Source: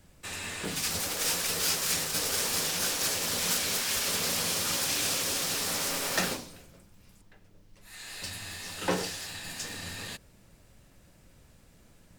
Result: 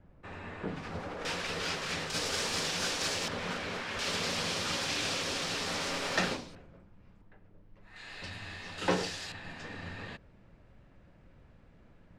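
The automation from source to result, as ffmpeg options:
-af "asetnsamples=n=441:p=0,asendcmd='1.25 lowpass f 3100;2.1 lowpass f 5200;3.28 lowpass f 2100;3.99 lowpass f 4400;6.55 lowpass f 1700;7.96 lowpass f 3000;8.78 lowpass f 5500;9.32 lowpass f 2100',lowpass=1.3k"

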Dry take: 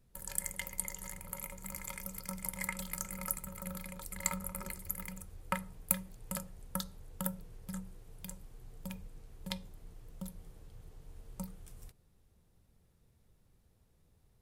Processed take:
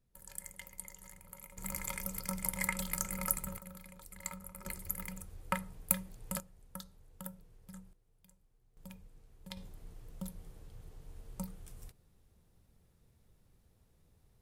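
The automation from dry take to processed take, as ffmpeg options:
-af "asetnsamples=n=441:p=0,asendcmd='1.57 volume volume 3.5dB;3.58 volume volume -8dB;4.65 volume volume 0.5dB;6.4 volume volume -9dB;7.93 volume volume -19.5dB;8.77 volume volume -7.5dB;9.57 volume volume 1dB',volume=-9dB"

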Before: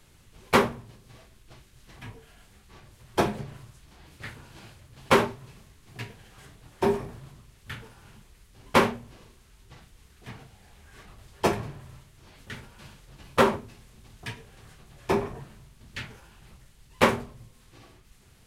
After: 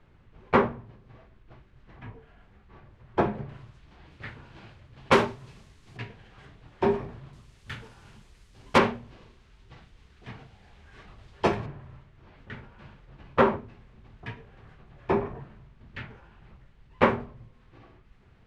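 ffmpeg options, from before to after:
-af "asetnsamples=n=441:p=0,asendcmd='3.49 lowpass f 3100;5.12 lowpass f 6600;5.97 lowpass f 3200;7.33 lowpass f 7100;8.78 lowpass f 3900;11.66 lowpass f 2100',lowpass=1.8k"

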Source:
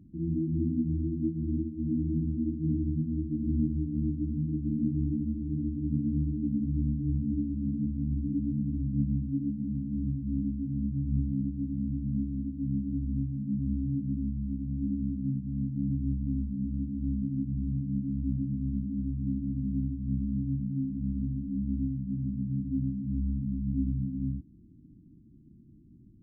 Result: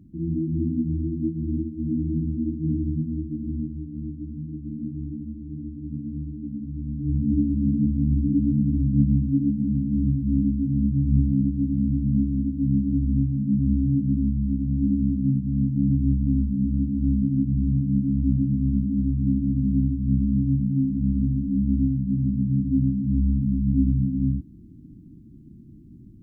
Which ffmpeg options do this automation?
-af "volume=16dB,afade=t=out:st=2.97:d=0.74:silence=0.446684,afade=t=in:st=6.86:d=0.51:silence=0.251189"

